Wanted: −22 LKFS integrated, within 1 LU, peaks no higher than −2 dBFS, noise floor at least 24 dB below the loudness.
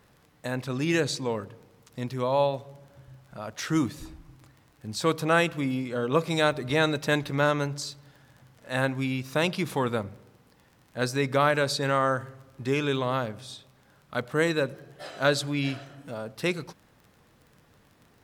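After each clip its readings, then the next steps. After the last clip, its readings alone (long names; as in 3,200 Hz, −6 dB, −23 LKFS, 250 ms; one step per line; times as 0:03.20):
crackle rate 23 per second; integrated loudness −27.5 LKFS; sample peak −8.0 dBFS; target loudness −22.0 LKFS
→ click removal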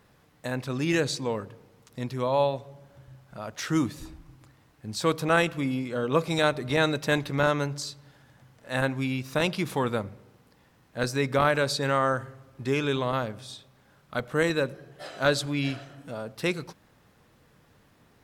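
crackle rate 0.33 per second; integrated loudness −27.5 LKFS; sample peak −8.5 dBFS; target loudness −22.0 LKFS
→ level +5.5 dB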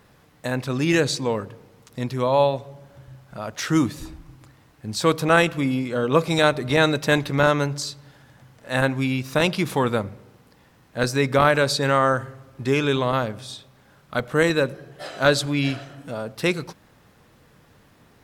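integrated loudness −22.0 LKFS; sample peak −3.0 dBFS; background noise floor −56 dBFS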